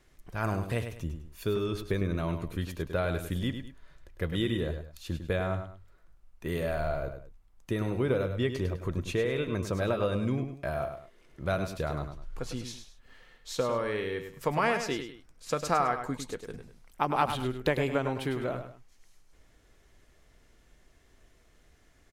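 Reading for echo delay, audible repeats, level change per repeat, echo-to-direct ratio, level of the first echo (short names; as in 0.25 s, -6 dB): 0.102 s, 2, -10.0 dB, -8.0 dB, -8.5 dB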